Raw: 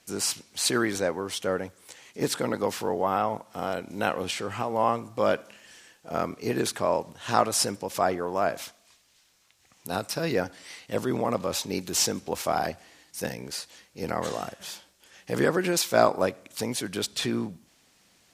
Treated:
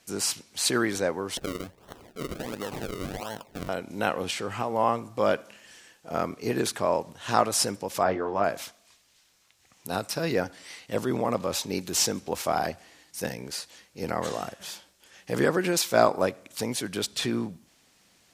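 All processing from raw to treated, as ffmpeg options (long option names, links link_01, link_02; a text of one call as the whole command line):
ffmpeg -i in.wav -filter_complex "[0:a]asettb=1/sr,asplit=3[link_01][link_02][link_03];[link_01]atrim=end=1.374[link_04];[link_02]atrim=start=1.37:end=3.69,asetpts=PTS-STARTPTS,afade=type=in:duration=0.004:curve=qsin,afade=type=out:start_time=2.316:duration=0.004:curve=qsin,acompressor=threshold=-30dB:ratio=4:attack=3.2:release=140:knee=1:detection=peak,acrusher=samples=36:mix=1:aa=0.000001:lfo=1:lforange=36:lforate=1.4[link_05];[link_03]atrim=start=3.686[link_06];[link_04][link_05]acrossfade=duration=0.004:curve1=hsin:curve2=qsin[link_07];[link_07][link_06]acrossfade=duration=0.004:curve1=qsin:curve2=hsin,asettb=1/sr,asplit=3[link_08][link_09][link_10];[link_08]atrim=end=8.034[link_11];[link_09]atrim=start=8.03:end=8.44,asetpts=PTS-STARTPTS,afade=type=in:duration=0.004:curve=qsin,afade=type=out:start_time=0.406:duration=0.004:curve=qsin,lowpass=3800,asplit=2[link_12][link_13];[link_13]adelay=20,volume=-6dB[link_14];[link_12][link_14]amix=inputs=2:normalize=0,atrim=end_sample=18081[link_15];[link_10]atrim=start=8.436[link_16];[link_11][link_15]acrossfade=duration=0.004:curve1=hsin:curve2=qsin[link_17];[link_17][link_16]acrossfade=duration=0.004:curve1=qsin:curve2=hsin" out.wav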